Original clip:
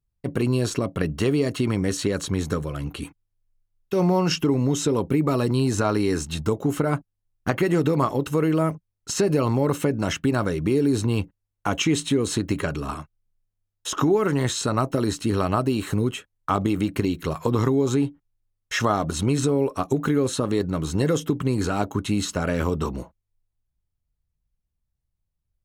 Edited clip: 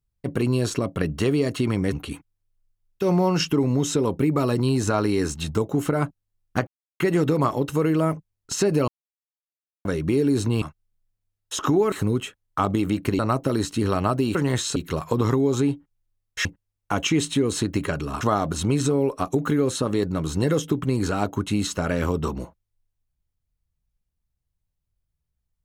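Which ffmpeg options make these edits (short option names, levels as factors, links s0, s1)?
-filter_complex "[0:a]asplit=12[s0][s1][s2][s3][s4][s5][s6][s7][s8][s9][s10][s11];[s0]atrim=end=1.922[s12];[s1]atrim=start=2.828:end=7.58,asetpts=PTS-STARTPTS,afade=t=out:st=4.748:d=0.004:c=hsin,apad=pad_dur=0.33[s13];[s2]atrim=start=7.58:end=9.46,asetpts=PTS-STARTPTS,afade=t=in:d=0.004:c=hsin,afade=t=out:st=1.876:d=0.004:c=hsin[s14];[s3]atrim=start=9.46:end=10.43,asetpts=PTS-STARTPTS,volume=0[s15];[s4]atrim=start=10.43:end=11.202,asetpts=PTS-STARTPTS,afade=t=in:d=0.004:c=hsin[s16];[s5]atrim=start=12.958:end=14.262[s17];[s6]atrim=start=15.828:end=17.102[s18];[s7]atrim=start=14.668:end=15.832[s19];[s8]atrim=start=14.258:end=14.672[s20];[s9]atrim=start=17.098:end=18.792[s21];[s10]atrim=start=11.198:end=12.962[s22];[s11]atrim=start=18.788[s23];[s13][s14][s15][s16]concat=n=4:v=0:a=1[s24];[s12][s24]acrossfade=d=0.004:c1=hsin:c2=hsin[s25];[s25][s17]acrossfade=d=0.004:c1=hsin:c2=hsin[s26];[s26][s18]acrossfade=d=0.004:c1=hsin:c2=hsin[s27];[s27][s19]acrossfade=d=0.004:c1=hsin:c2=hsin[s28];[s28][s20]acrossfade=d=0.004:c1=hsin:c2=hsin[s29];[s29][s21]acrossfade=d=0.004:c1=hsin:c2=hsin[s30];[s30][s22]acrossfade=d=0.004:c1=hsin:c2=hsin[s31];[s31][s23]acrossfade=d=0.004:c1=hsin:c2=hsin"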